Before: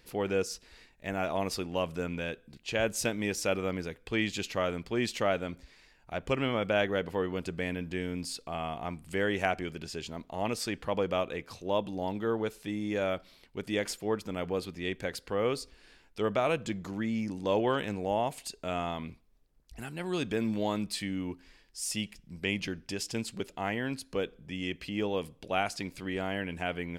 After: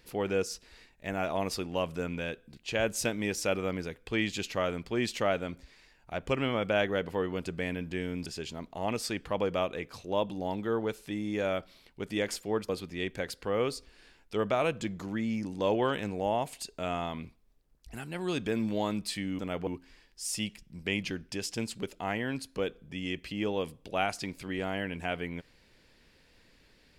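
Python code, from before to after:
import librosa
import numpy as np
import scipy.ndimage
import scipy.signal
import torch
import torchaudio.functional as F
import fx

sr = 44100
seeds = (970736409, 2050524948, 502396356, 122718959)

y = fx.edit(x, sr, fx.cut(start_s=8.26, length_s=1.57),
    fx.move(start_s=14.26, length_s=0.28, to_s=21.24), tone=tone)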